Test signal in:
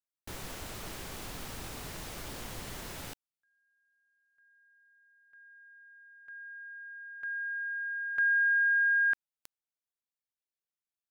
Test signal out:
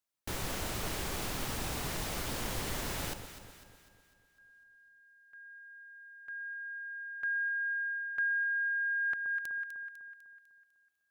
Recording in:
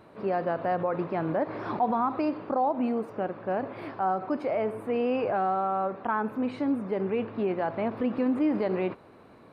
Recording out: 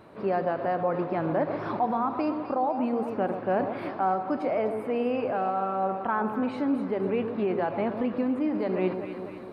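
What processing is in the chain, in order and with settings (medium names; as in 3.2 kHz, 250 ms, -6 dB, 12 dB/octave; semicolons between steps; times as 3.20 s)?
echo whose repeats swap between lows and highs 125 ms, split 1.1 kHz, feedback 69%, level -8 dB; gain riding within 5 dB 0.5 s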